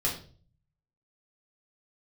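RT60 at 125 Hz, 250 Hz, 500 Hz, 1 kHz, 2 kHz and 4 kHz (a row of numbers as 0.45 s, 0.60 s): 0.95 s, 0.60 s, 0.50 s, 0.35 s, 0.35 s, 0.40 s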